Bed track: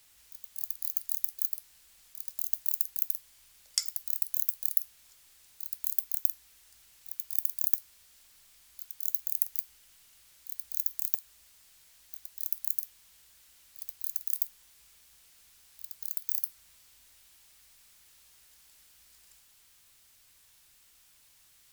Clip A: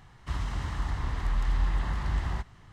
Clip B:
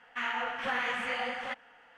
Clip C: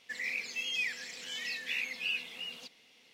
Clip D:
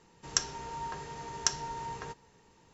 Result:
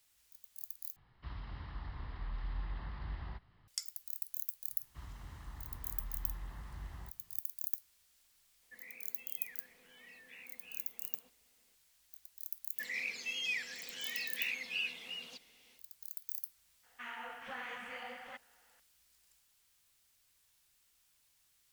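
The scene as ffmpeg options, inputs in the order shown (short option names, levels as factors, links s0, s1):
-filter_complex "[1:a]asplit=2[s0][s1];[3:a]asplit=2[s2][s3];[0:a]volume=0.299[s4];[s0]aresample=11025,aresample=44100[s5];[s2]lowpass=1600[s6];[s4]asplit=2[s7][s8];[s7]atrim=end=0.964[s9];[s5]atrim=end=2.72,asetpts=PTS-STARTPTS,volume=0.211[s10];[s8]atrim=start=3.676[s11];[s1]atrim=end=2.72,asetpts=PTS-STARTPTS,volume=0.133,afade=t=in:d=0.004:c=hsin,afade=t=out:st=2.716:d=0.004:c=hsin,adelay=4680[s12];[s6]atrim=end=3.13,asetpts=PTS-STARTPTS,volume=0.266,afade=t=in:d=0.004:c=hsin,afade=t=out:st=3.126:d=0.004:c=hsin,adelay=8620[s13];[s3]atrim=end=3.13,asetpts=PTS-STARTPTS,volume=0.708,afade=t=in:d=0.1,afade=t=out:st=3.03:d=0.1,adelay=12700[s14];[2:a]atrim=end=1.97,asetpts=PTS-STARTPTS,volume=0.237,afade=t=in:d=0.004:c=hsin,afade=t=out:st=1.966:d=0.004:c=hsin,adelay=16830[s15];[s9][s10]acrossfade=d=0.004:c1=hsin:c2=hsin[s16];[s16][s11]acrossfade=d=0.004:c1=hsin:c2=hsin[s17];[s17][s12][s13][s14][s15]amix=inputs=5:normalize=0"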